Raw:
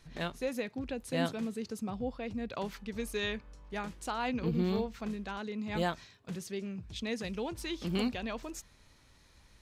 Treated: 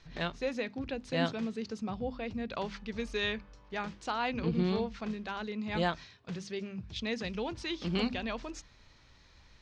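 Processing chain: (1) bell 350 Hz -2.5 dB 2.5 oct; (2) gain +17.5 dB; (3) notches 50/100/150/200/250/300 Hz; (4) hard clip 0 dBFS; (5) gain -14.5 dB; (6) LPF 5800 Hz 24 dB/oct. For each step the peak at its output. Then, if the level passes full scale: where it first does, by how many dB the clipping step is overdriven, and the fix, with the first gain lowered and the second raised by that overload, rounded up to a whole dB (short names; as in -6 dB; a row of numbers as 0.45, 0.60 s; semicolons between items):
-21.0, -3.5, -3.5, -3.5, -18.0, -18.5 dBFS; no overload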